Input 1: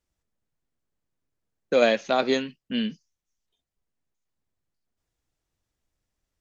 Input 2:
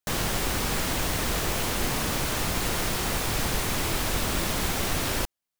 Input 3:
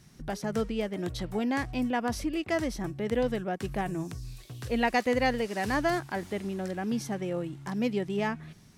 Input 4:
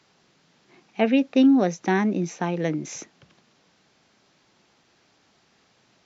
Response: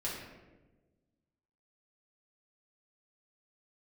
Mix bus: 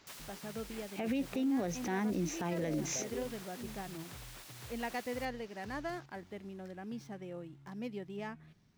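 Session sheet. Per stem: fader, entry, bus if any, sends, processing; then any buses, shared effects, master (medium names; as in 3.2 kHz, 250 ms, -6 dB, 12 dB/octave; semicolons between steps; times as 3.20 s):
-14.5 dB, 0.85 s, no send, four-pole ladder low-pass 650 Hz, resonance 35%
-14.5 dB, 0.00 s, no send, spectral gate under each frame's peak -15 dB weak; auto duck -7 dB, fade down 0.30 s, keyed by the fourth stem
-12.5 dB, 0.00 s, no send, median filter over 5 samples
0.0 dB, 0.00 s, no send, compression 2:1, threshold -30 dBFS, peak gain reduction 9.5 dB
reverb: none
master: peak limiter -26.5 dBFS, peak gain reduction 12 dB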